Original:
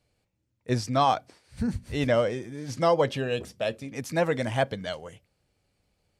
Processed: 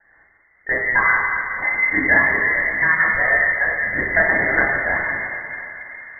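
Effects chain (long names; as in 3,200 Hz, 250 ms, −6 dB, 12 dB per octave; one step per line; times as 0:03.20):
Butterworth high-pass 150 Hz 96 dB per octave
tilt shelving filter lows −5 dB, about 840 Hz
downward compressor, threshold −32 dBFS, peak gain reduction 14 dB
rotating-speaker cabinet horn 5 Hz
frequency shifter +410 Hz
convolution reverb RT60 3.5 s, pre-delay 3 ms, DRR −5.5 dB
voice inversion scrambler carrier 2,700 Hz
one half of a high-frequency compander encoder only
level +6.5 dB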